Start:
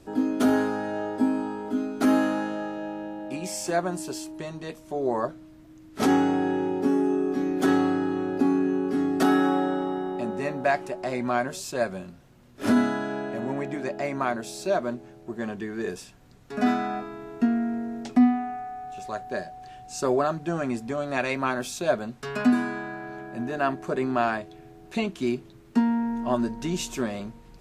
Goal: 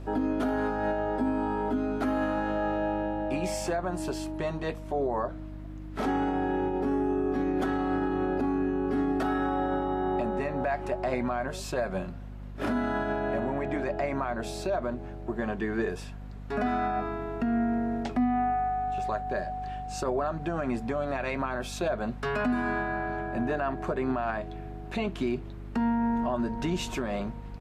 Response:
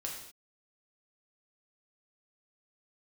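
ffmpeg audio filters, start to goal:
-af "firequalizer=gain_entry='entry(310,0);entry(670,5);entry(6100,-8)':delay=0.05:min_phase=1,alimiter=limit=-23dB:level=0:latency=1:release=141,aeval=exprs='val(0)+0.00794*(sin(2*PI*50*n/s)+sin(2*PI*2*50*n/s)/2+sin(2*PI*3*50*n/s)/3+sin(2*PI*4*50*n/s)/4+sin(2*PI*5*50*n/s)/5)':c=same,volume=2.5dB"

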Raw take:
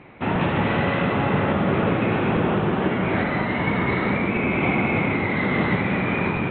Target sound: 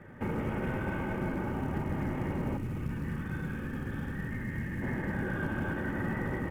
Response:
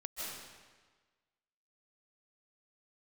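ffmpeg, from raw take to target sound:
-filter_complex "[0:a]alimiter=limit=-18dB:level=0:latency=1:release=39,highpass=f=49:p=1,aemphasis=mode=reproduction:type=75kf,asplit=2[a][b];[b]adelay=158,lowpass=f=1.7k:p=1,volume=-3.5dB,asplit=2[c][d];[d]adelay=158,lowpass=f=1.7k:p=1,volume=0.33,asplit=2[e][f];[f]adelay=158,lowpass=f=1.7k:p=1,volume=0.33,asplit=2[g][h];[h]adelay=158,lowpass=f=1.7k:p=1,volume=0.33[i];[a][c][e][g][i]amix=inputs=5:normalize=0,acompressor=threshold=-30dB:ratio=2,aecho=1:1:3:0.52,afreqshift=-470,acrusher=bits=8:mode=log:mix=0:aa=0.000001,asettb=1/sr,asplit=3[j][k][l];[j]atrim=end=2.574[m];[k]atrim=start=2.57:end=4.82,asetpts=PTS-STARTPTS,afade=t=in:d=0.004:c=qsin,afade=t=out:st=2.246:d=0.004:c=qsin,equalizer=f=680:t=o:w=1.8:g=-12.5[n];[l]atrim=start=4.816[o];[m][n]acrossfade=d=0.004:c1=hsin:c2=qsin[p];[p][o]acrossfade=d=0.004:c1=qsin:c2=hsin[q];[1:a]atrim=start_sample=2205,atrim=end_sample=3528,asetrate=28224,aresample=44100[r];[q][r]afir=irnorm=-1:irlink=0"

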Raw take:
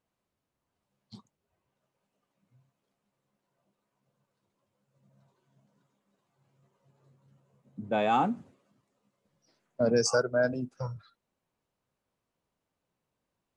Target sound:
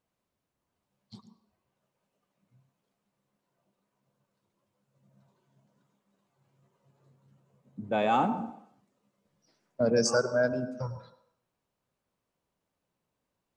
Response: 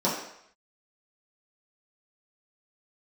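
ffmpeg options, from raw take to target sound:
-filter_complex "[0:a]asplit=2[a][b];[1:a]atrim=start_sample=2205,adelay=102[c];[b][c]afir=irnorm=-1:irlink=0,volume=-25.5dB[d];[a][d]amix=inputs=2:normalize=0"

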